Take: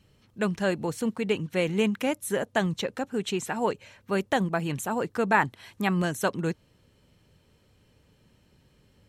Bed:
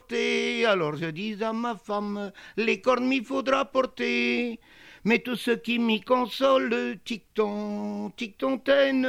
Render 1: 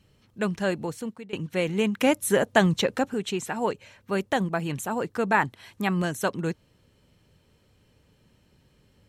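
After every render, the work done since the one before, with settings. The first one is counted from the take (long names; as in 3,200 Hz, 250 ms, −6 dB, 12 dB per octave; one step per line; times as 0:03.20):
0:00.77–0:01.33: fade out, to −21.5 dB
0:02.01–0:03.14: clip gain +6 dB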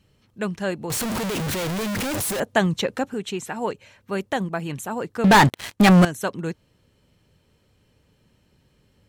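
0:00.90–0:02.40: sign of each sample alone
0:05.24–0:06.05: leveller curve on the samples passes 5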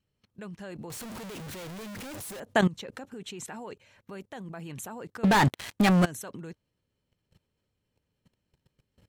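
output level in coarse steps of 20 dB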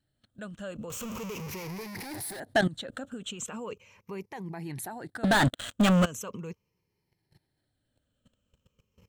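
rippled gain that drifts along the octave scale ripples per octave 0.8, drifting −0.39 Hz, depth 12 dB
soft clipping −16.5 dBFS, distortion −15 dB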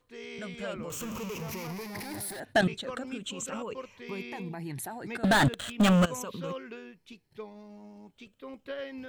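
mix in bed −17.5 dB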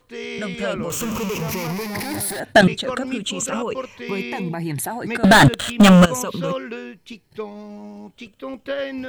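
level +12 dB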